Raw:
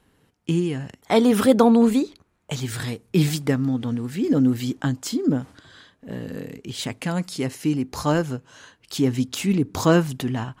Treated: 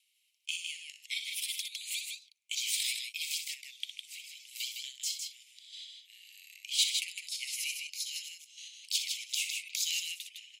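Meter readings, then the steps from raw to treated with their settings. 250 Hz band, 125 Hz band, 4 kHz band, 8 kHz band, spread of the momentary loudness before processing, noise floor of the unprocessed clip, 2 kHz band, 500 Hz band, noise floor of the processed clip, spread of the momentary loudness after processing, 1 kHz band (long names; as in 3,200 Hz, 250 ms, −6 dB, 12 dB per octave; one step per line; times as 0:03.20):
below −40 dB, below −40 dB, +1.5 dB, +1.0 dB, 16 LU, −66 dBFS, −6.5 dB, below −40 dB, −74 dBFS, 16 LU, below −40 dB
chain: Butterworth high-pass 2,200 Hz 96 dB per octave
rotating-speaker cabinet horn 1 Hz
sample-and-hold tremolo
in parallel at +2.5 dB: output level in coarse steps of 11 dB
on the sum: loudspeakers that aren't time-aligned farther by 21 metres −9 dB, 54 metres −5 dB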